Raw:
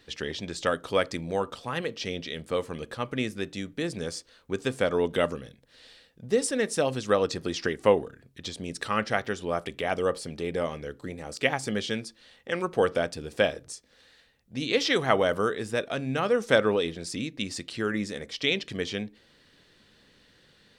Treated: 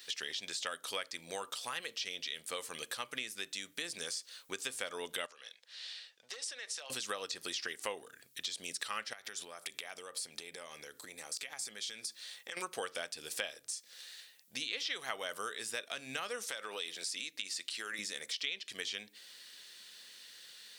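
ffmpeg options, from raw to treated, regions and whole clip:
ffmpeg -i in.wav -filter_complex "[0:a]asettb=1/sr,asplit=3[link_01][link_02][link_03];[link_01]atrim=end=5.264[link_04];[link_02]atrim=start=5.26:end=6.9,asetpts=PTS-STARTPTS,afade=type=in:duration=0.004:curve=qsin,afade=type=out:start_time=1.636:duration=0.004:curve=qsin,aeval=exprs='0.168*(abs(mod(val(0)/0.168+3,4)-2)-1)':channel_layout=same,acrossover=split=480 6200:gain=0.0794 1 0.0794[link_05][link_06][link_07];[link_05][link_06][link_07]amix=inputs=3:normalize=0,acompressor=threshold=-43dB:ratio=5:attack=3.2:release=140:knee=1:detection=peak[link_08];[link_03]atrim=start=6.896[link_09];[link_04][link_08]acrossfade=duration=0.004:curve1=hsin:curve2=qsin[link_10];[link_10][link_09]acrossfade=duration=0.004:curve1=qsin:curve2=hsin,asettb=1/sr,asplit=3[link_11][link_12][link_13];[link_11]atrim=end=9.134[link_14];[link_12]atrim=start=9.13:end=12.57,asetpts=PTS-STARTPTS,afade=type=in:duration=0.004:curve=qsin,afade=type=out:start_time=3.436:duration=0.004:curve=qsin,highpass=40,bandreject=frequency=2900:width=12,acompressor=threshold=-39dB:ratio=8:attack=3.2:release=140:knee=1:detection=peak[link_15];[link_13]atrim=start=12.566[link_16];[link_14][link_15]acrossfade=duration=0.004:curve1=hsin:curve2=qsin[link_17];[link_17][link_16]acrossfade=duration=0.004:curve1=qsin:curve2=hsin,asettb=1/sr,asplit=3[link_18][link_19][link_20];[link_18]atrim=end=16.474[link_21];[link_19]atrim=start=16.47:end=17.99,asetpts=PTS-STARTPTS,afade=type=in:duration=0.004:curve=qsin,afade=type=out:start_time=1.516:duration=0.004:curve=qsin,highpass=frequency=350:poles=1,acompressor=threshold=-29dB:ratio=6:attack=3.2:release=140:knee=1:detection=peak[link_22];[link_20]atrim=start=17.986[link_23];[link_21][link_22]acrossfade=duration=0.004:curve1=hsin:curve2=qsin[link_24];[link_24][link_23]acrossfade=duration=0.004:curve1=qsin:curve2=hsin,acrossover=split=4100[link_25][link_26];[link_26]acompressor=threshold=-46dB:ratio=4:attack=1:release=60[link_27];[link_25][link_27]amix=inputs=2:normalize=0,aderivative,acompressor=threshold=-52dB:ratio=4,volume=14.5dB" out.wav

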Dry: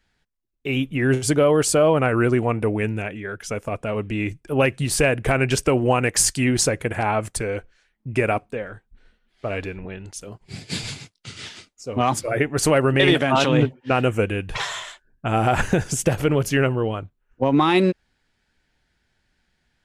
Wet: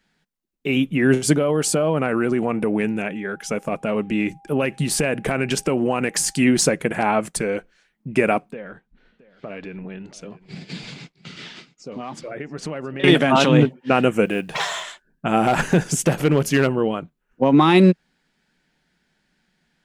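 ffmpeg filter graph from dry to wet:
ffmpeg -i in.wav -filter_complex "[0:a]asettb=1/sr,asplit=3[link_01][link_02][link_03];[link_01]atrim=end=1.374[link_04];[link_02]atrim=start=1.37:end=6.39,asetpts=PTS-STARTPTS,afade=type=in:duration=0.004:curve=qsin,afade=type=out:start_time=5.016:duration=0.004:curve=qsin,acompressor=threshold=-19dB:ratio=5:attack=3.2:release=140:knee=1:detection=peak,aeval=exprs='val(0)+0.00282*sin(2*PI*800*n/s)':channel_layout=same[link_05];[link_03]atrim=start=6.386[link_06];[link_04][link_05]acrossfade=duration=0.004:curve1=hsin:curve2=qsin[link_07];[link_07][link_06]acrossfade=duration=0.004:curve1=qsin:curve2=hsin,asettb=1/sr,asplit=3[link_08][link_09][link_10];[link_08]atrim=end=8.524[link_11];[link_09]atrim=start=8.52:end=13.04,asetpts=PTS-STARTPTS,afade=type=in:duration=0.004:curve=qsin,afade=type=out:start_time=4.516:duration=0.004:curve=qsin,lowpass=4400,acompressor=threshold=-35dB:ratio=3:attack=3.2:release=140:knee=1:detection=peak,aecho=1:1:669:0.106,atrim=end_sample=199332[link_12];[link_10]atrim=start=13.036[link_13];[link_11][link_12]acrossfade=duration=0.004:curve1=hsin:curve2=qsin[link_14];[link_14][link_13]acrossfade=duration=0.004:curve1=qsin:curve2=hsin,asettb=1/sr,asplit=3[link_15][link_16][link_17];[link_15]atrim=end=14.254[link_18];[link_16]atrim=start=14.25:end=14.83,asetpts=PTS-STARTPTS,afade=type=in:duration=0.004:curve=qsin,afade=type=out:start_time=0.576:duration=0.004:curve=qsin,highpass=frequency=140:poles=1,equalizer=frequency=680:width_type=o:width=0.58:gain=6,acrusher=bits=8:mode=log:mix=0:aa=0.000001[link_19];[link_17]atrim=start=14.826[link_20];[link_18][link_19]acrossfade=duration=0.004:curve1=hsin:curve2=qsin[link_21];[link_21][link_20]acrossfade=duration=0.004:curve1=qsin:curve2=hsin,asettb=1/sr,asplit=3[link_22][link_23][link_24];[link_22]atrim=end=15.474[link_25];[link_23]atrim=start=15.47:end=16.78,asetpts=PTS-STARTPTS,afade=type=in:duration=0.004:curve=qsin,afade=type=out:start_time=1.306:duration=0.004:curve=qsin,bandreject=frequency=200:width=6.5,asoftclip=type=hard:threshold=-14.5dB[link_26];[link_24]atrim=start=16.776[link_27];[link_25][link_26]acrossfade=duration=0.004:curve1=hsin:curve2=qsin[link_28];[link_28][link_27]acrossfade=duration=0.004:curve1=qsin:curve2=hsin,deesser=0.3,lowshelf=frequency=130:width_type=q:width=3:gain=-8.5,volume=2dB" out.wav

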